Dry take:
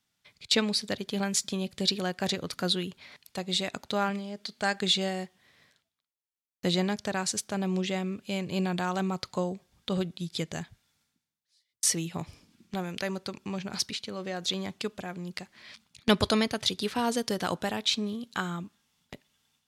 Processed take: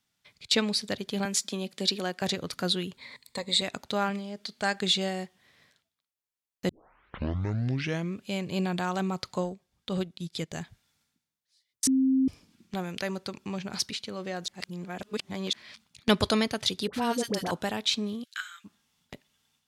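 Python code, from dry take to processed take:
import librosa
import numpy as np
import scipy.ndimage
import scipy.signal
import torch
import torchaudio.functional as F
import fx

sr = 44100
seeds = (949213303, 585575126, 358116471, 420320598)

y = fx.highpass(x, sr, hz=190.0, slope=24, at=(1.25, 2.22))
y = fx.ripple_eq(y, sr, per_octave=0.99, db=12, at=(2.97, 3.62))
y = fx.transient(y, sr, attack_db=-3, sustain_db=-9, at=(9.41, 10.6))
y = fx.dispersion(y, sr, late='highs', ms=63.0, hz=820.0, at=(16.87, 17.51))
y = fx.ellip_highpass(y, sr, hz=1500.0, order=4, stop_db=80, at=(18.23, 18.64), fade=0.02)
y = fx.edit(y, sr, fx.tape_start(start_s=6.69, length_s=1.47),
    fx.bleep(start_s=11.87, length_s=0.41, hz=264.0, db=-20.0),
    fx.reverse_span(start_s=14.48, length_s=1.05), tone=tone)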